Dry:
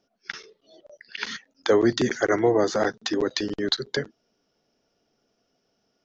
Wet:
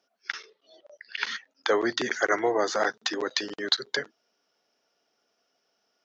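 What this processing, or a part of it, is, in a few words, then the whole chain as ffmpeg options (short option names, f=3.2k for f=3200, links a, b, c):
filter by subtraction: -filter_complex "[0:a]asplit=2[a][b];[b]lowpass=1.2k,volume=-1[c];[a][c]amix=inputs=2:normalize=0,asettb=1/sr,asplit=3[d][e][f];[d]atrim=end=0.374[g];[e]atrim=start=0.37:end=2.14,asetpts=PTS-STARTPTS,afade=t=in:d=0.004:c=qsin,afade=t=out:st=1.766:d=0.004:c=qsin,lowpass=5.9k[h];[f]atrim=start=2.136[i];[g][h]acrossfade=d=0.004:c1=hsin:c2=qsin[j];[j][i]acrossfade=d=0.004:c1=qsin:c2=hsin"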